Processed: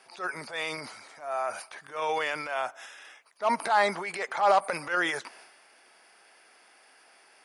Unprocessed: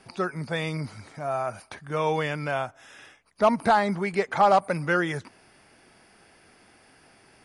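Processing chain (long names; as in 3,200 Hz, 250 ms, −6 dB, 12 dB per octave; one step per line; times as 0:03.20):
high-pass filter 600 Hz 12 dB per octave
transient designer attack −9 dB, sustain +7 dB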